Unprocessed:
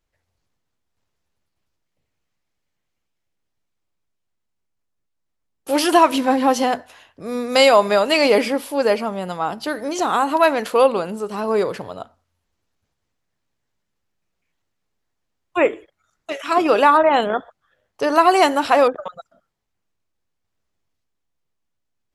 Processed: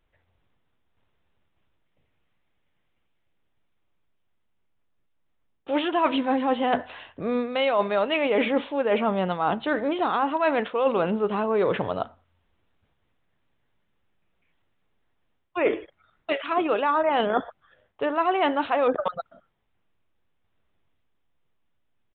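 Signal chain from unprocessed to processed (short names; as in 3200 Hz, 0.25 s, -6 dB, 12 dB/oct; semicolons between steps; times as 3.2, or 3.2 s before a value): reverse; compressor 8:1, threshold -25 dBFS, peak gain reduction 16.5 dB; reverse; downsampling 8000 Hz; gain +5 dB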